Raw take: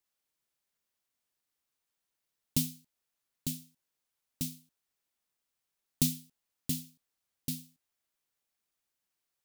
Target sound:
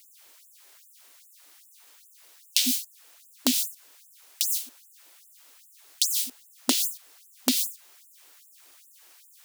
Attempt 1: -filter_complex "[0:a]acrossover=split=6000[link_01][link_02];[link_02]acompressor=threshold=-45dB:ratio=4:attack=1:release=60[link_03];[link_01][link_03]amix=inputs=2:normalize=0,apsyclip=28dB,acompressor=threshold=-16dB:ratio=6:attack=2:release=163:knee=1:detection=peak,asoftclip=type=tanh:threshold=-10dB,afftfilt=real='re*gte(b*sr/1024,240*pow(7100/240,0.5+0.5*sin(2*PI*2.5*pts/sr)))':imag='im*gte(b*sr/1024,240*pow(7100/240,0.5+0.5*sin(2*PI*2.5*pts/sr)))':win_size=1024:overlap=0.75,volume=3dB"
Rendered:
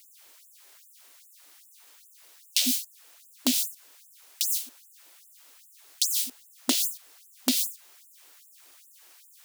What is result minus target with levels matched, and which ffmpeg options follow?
soft clipping: distortion +10 dB
-filter_complex "[0:a]acrossover=split=6000[link_01][link_02];[link_02]acompressor=threshold=-45dB:ratio=4:attack=1:release=60[link_03];[link_01][link_03]amix=inputs=2:normalize=0,apsyclip=28dB,acompressor=threshold=-16dB:ratio=6:attack=2:release=163:knee=1:detection=peak,asoftclip=type=tanh:threshold=-2dB,afftfilt=real='re*gte(b*sr/1024,240*pow(7100/240,0.5+0.5*sin(2*PI*2.5*pts/sr)))':imag='im*gte(b*sr/1024,240*pow(7100/240,0.5+0.5*sin(2*PI*2.5*pts/sr)))':win_size=1024:overlap=0.75,volume=3dB"

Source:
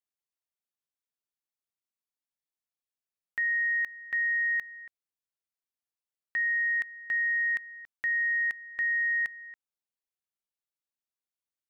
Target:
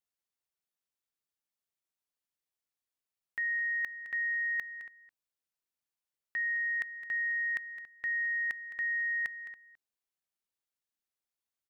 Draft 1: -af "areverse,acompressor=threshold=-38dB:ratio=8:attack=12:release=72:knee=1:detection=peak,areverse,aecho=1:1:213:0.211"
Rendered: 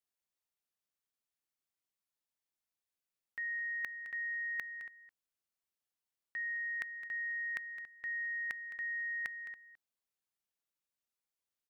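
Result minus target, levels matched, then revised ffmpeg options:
downward compressor: peak gain reduction +6 dB
-af "areverse,acompressor=threshold=-31dB:ratio=8:attack=12:release=72:knee=1:detection=peak,areverse,aecho=1:1:213:0.211"

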